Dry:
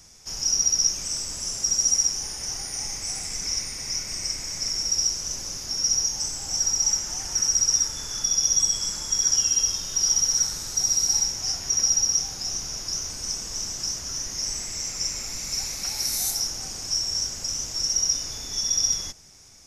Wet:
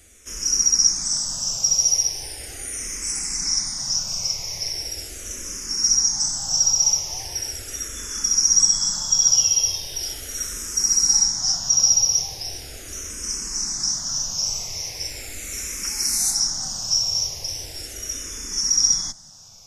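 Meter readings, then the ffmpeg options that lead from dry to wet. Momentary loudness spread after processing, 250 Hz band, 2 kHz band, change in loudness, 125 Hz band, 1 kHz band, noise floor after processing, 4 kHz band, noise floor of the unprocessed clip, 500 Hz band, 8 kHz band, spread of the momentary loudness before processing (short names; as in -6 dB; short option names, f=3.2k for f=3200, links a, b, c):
15 LU, +2.0 dB, +2.0 dB, +3.5 dB, +2.0 dB, +2.0 dB, -37 dBFS, +3.0 dB, -36 dBFS, +2.0 dB, +3.0 dB, 10 LU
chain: -filter_complex "[0:a]equalizer=f=10k:w=1.2:g=4,asplit=2[a][b];[b]afreqshift=-0.39[c];[a][c]amix=inputs=2:normalize=1,volume=5dB"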